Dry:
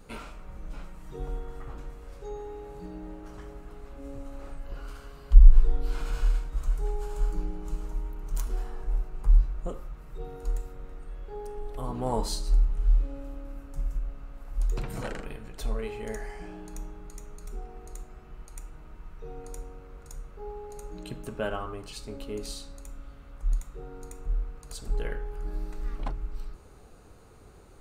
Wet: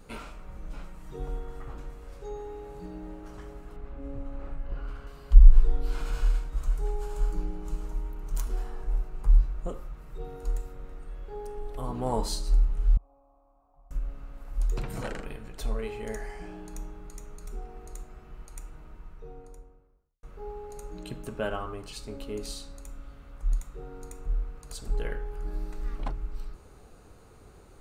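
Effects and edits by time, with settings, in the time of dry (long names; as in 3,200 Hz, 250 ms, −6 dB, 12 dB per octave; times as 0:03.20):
0:03.76–0:05.07: bass and treble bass +4 dB, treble −14 dB
0:12.97–0:13.91: formant resonators in series a
0:18.71–0:20.23: fade out and dull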